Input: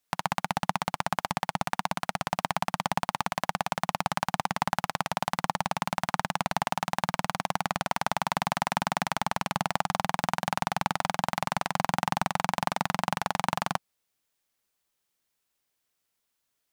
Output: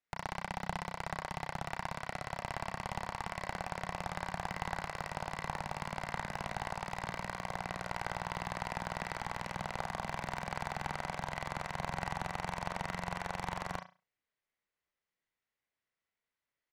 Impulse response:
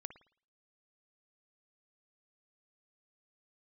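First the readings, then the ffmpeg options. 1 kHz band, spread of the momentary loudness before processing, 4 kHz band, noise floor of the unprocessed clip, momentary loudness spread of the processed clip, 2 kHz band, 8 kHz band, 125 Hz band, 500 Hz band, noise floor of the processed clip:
-10.5 dB, 2 LU, -12.0 dB, -80 dBFS, 2 LU, -7.5 dB, -12.0 dB, -6.5 dB, -8.0 dB, under -85 dBFS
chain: -filter_complex "[0:a]acrossover=split=2600[a][b];[b]adynamicsmooth=sensitivity=6.5:basefreq=4.1k[c];[a][c]amix=inputs=2:normalize=0,equalizer=f=2k:w=4.7:g=7,aecho=1:1:32|73:0.299|0.126[d];[1:a]atrim=start_sample=2205,asetrate=70560,aresample=44100[e];[d][e]afir=irnorm=-1:irlink=0,aeval=exprs='clip(val(0),-1,0.0141)':c=same,volume=1.5dB"

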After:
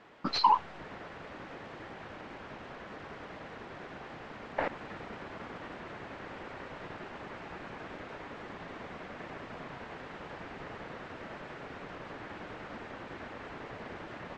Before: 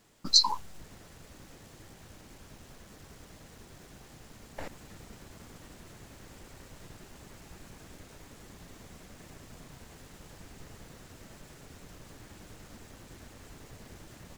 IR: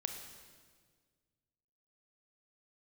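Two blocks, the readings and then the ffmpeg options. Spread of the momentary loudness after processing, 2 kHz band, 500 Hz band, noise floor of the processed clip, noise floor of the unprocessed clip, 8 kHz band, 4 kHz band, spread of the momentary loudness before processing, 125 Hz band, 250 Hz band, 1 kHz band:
10 LU, +11.0 dB, +10.0 dB, -48 dBFS, -55 dBFS, -21.5 dB, -11.0 dB, 23 LU, +0.5 dB, +5.5 dB, +9.5 dB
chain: -filter_complex "[0:a]asplit=2[a][b];[b]highpass=f=720:p=1,volume=25dB,asoftclip=type=tanh:threshold=-5dB[c];[a][c]amix=inputs=2:normalize=0,lowpass=f=2k:p=1,volume=-6dB,lowpass=2.6k,volume=-4dB"

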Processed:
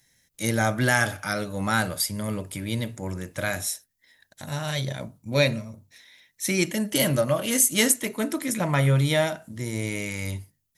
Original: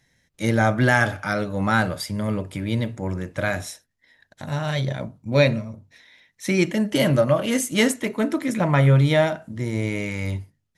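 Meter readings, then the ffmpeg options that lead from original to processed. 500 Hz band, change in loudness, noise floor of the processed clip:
-4.5 dB, -3.0 dB, -73 dBFS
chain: -af "aemphasis=mode=production:type=75fm,volume=-4dB"

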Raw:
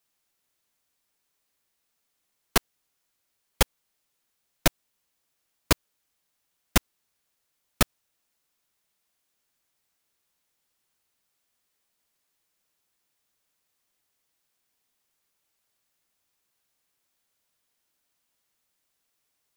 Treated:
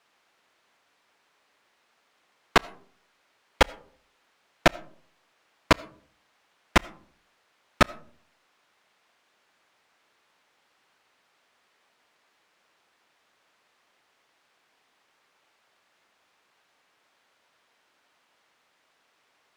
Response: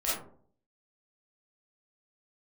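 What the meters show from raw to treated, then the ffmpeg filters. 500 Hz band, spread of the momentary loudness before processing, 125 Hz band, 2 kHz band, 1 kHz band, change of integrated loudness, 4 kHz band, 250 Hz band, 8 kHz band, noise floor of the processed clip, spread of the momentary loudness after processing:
+5.0 dB, 0 LU, -1.0 dB, +5.0 dB, +6.5 dB, +1.5 dB, 0.0 dB, +1.5 dB, -8.0 dB, -70 dBFS, 1 LU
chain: -filter_complex "[0:a]asplit=2[a][b];[b]highpass=f=720:p=1,volume=25dB,asoftclip=type=tanh:threshold=-3.5dB[c];[a][c]amix=inputs=2:normalize=0,lowpass=f=3k:p=1,volume=-6dB,aemphasis=mode=reproduction:type=75kf,asplit=2[d][e];[1:a]atrim=start_sample=2205,adelay=33[f];[e][f]afir=irnorm=-1:irlink=0,volume=-29.5dB[g];[d][g]amix=inputs=2:normalize=0,volume=1.5dB"

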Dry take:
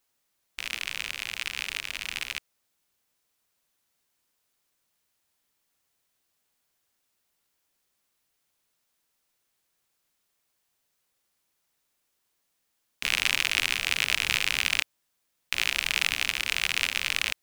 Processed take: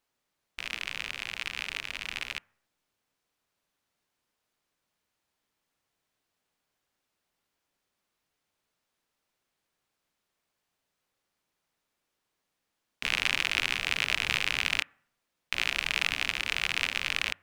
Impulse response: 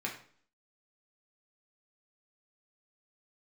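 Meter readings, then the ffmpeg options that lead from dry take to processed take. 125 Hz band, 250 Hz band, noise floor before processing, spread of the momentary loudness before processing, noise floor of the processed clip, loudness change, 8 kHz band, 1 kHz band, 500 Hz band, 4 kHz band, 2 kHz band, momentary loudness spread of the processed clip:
0.0 dB, +1.0 dB, -77 dBFS, 9 LU, -83 dBFS, -2.5 dB, -7.5 dB, 0.0 dB, +0.5 dB, -3.0 dB, -2.0 dB, 9 LU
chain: -filter_complex "[0:a]lowpass=f=3.2k:p=1,asplit=2[a][b];[1:a]atrim=start_sample=2205,asetrate=33957,aresample=44100,lowpass=1.4k[c];[b][c]afir=irnorm=-1:irlink=0,volume=-21dB[d];[a][d]amix=inputs=2:normalize=0"

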